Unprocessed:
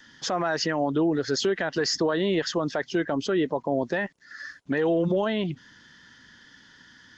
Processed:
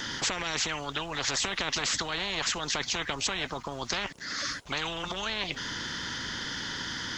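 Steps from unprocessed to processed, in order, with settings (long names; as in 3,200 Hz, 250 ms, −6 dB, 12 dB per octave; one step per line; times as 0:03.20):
every bin compressed towards the loudest bin 10 to 1
level +3 dB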